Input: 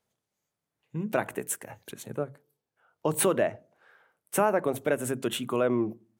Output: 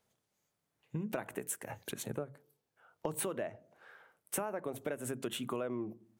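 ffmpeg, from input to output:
-af "acompressor=threshold=0.0141:ratio=6,volume=1.26"

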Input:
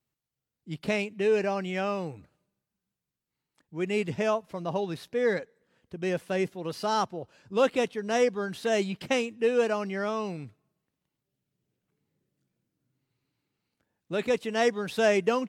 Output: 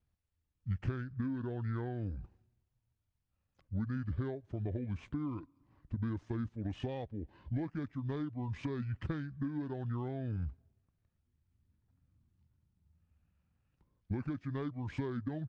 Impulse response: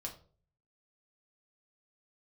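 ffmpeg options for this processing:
-af "asetrate=26990,aresample=44100,atempo=1.63392,acompressor=threshold=0.0126:ratio=6,aemphasis=mode=reproduction:type=bsi,volume=0.75"

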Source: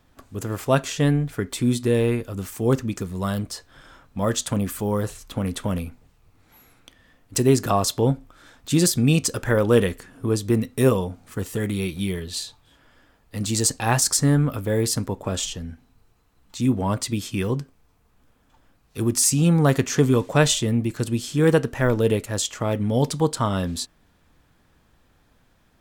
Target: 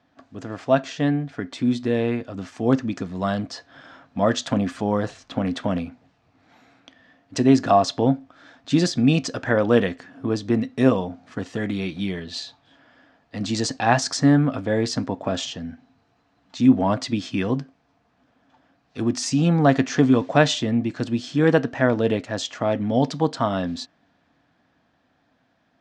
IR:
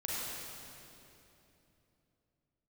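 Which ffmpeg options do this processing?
-af "dynaudnorm=f=140:g=31:m=2.24,highpass=130,equalizer=f=270:t=q:w=4:g=7,equalizer=f=400:t=q:w=4:g=-4,equalizer=f=690:t=q:w=4:g=9,equalizer=f=1700:t=q:w=4:g=4,lowpass=f=5600:w=0.5412,lowpass=f=5600:w=1.3066,volume=0.631"

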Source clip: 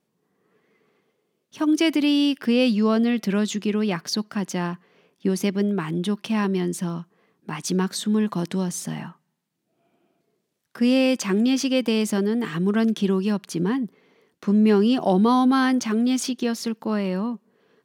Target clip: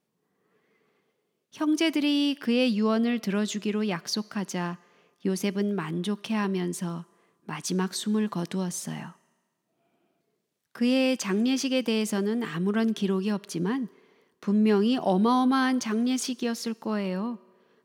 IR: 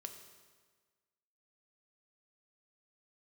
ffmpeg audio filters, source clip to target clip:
-filter_complex "[0:a]asplit=2[s0][s1];[s1]highpass=450[s2];[1:a]atrim=start_sample=2205[s3];[s2][s3]afir=irnorm=-1:irlink=0,volume=0.355[s4];[s0][s4]amix=inputs=2:normalize=0,volume=0.596"

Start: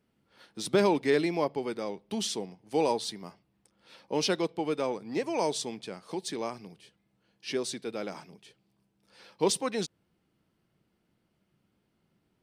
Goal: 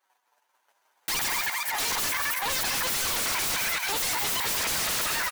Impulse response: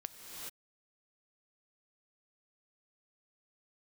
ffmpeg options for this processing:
-filter_complex "[0:a]areverse,agate=range=0.0224:threshold=0.00112:ratio=3:detection=peak,asetrate=85689,aresample=44100,atempo=0.514651,aeval=exprs='(tanh(112*val(0)+0.35)-tanh(0.35))/112':c=same,highpass=f=640:p=1,aecho=1:1:513|1026|1539|2052|2565:0.355|0.17|0.0817|0.0392|0.0188,asplit=2[s0][s1];[1:a]atrim=start_sample=2205[s2];[s1][s2]afir=irnorm=-1:irlink=0,volume=0.422[s3];[s0][s3]amix=inputs=2:normalize=0,asetrate=103194,aresample=44100,equalizer=f=950:w=5.8:g=4.5,aeval=exprs='0.0237*sin(PI/2*7.08*val(0)/0.0237)':c=same,dynaudnorm=f=110:g=11:m=1.58,volume=1.58"

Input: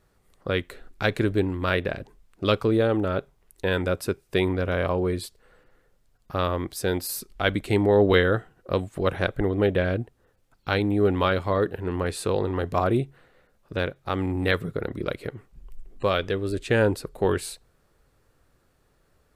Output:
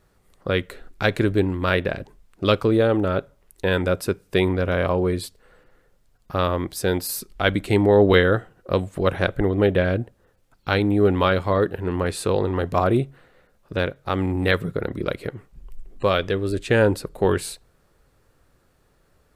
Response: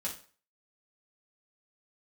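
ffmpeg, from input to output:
-filter_complex "[0:a]asplit=2[s0][s1];[s1]lowpass=2100[s2];[1:a]atrim=start_sample=2205[s3];[s2][s3]afir=irnorm=-1:irlink=0,volume=0.075[s4];[s0][s4]amix=inputs=2:normalize=0,volume=1.41"

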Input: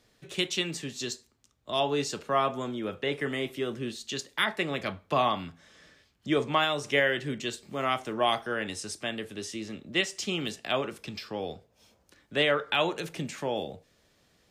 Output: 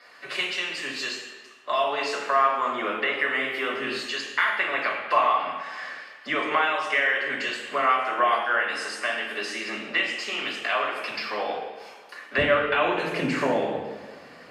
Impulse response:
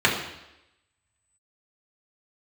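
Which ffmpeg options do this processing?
-filter_complex "[0:a]asetnsamples=n=441:p=0,asendcmd='12.38 highpass f 250',highpass=780,acompressor=threshold=0.00501:ratio=3[s0];[1:a]atrim=start_sample=2205,asetrate=28224,aresample=44100[s1];[s0][s1]afir=irnorm=-1:irlink=0"

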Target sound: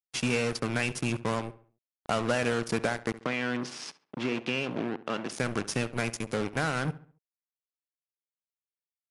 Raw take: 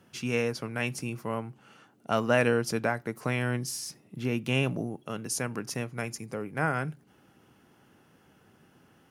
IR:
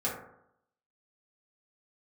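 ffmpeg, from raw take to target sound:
-filter_complex "[0:a]deesser=0.7,equalizer=f=2800:w=1.1:g=2.5,acompressor=threshold=0.0355:ratio=6,asoftclip=type=tanh:threshold=0.0944,acrusher=bits=5:mix=0:aa=0.5,asplit=3[s0][s1][s2];[s0]afade=t=out:st=3.17:d=0.02[s3];[s1]highpass=220,lowpass=4100,afade=t=in:st=3.17:d=0.02,afade=t=out:st=5.3:d=0.02[s4];[s2]afade=t=in:st=5.3:d=0.02[s5];[s3][s4][s5]amix=inputs=3:normalize=0,asplit=2[s6][s7];[s7]adelay=69,lowpass=f=2800:p=1,volume=0.158,asplit=2[s8][s9];[s9]adelay=69,lowpass=f=2800:p=1,volume=0.4,asplit=2[s10][s11];[s11]adelay=69,lowpass=f=2800:p=1,volume=0.4,asplit=2[s12][s13];[s13]adelay=69,lowpass=f=2800:p=1,volume=0.4[s14];[s6][s8][s10][s12][s14]amix=inputs=5:normalize=0,volume=2.11" -ar 24000 -c:a libmp3lame -b:a 80k

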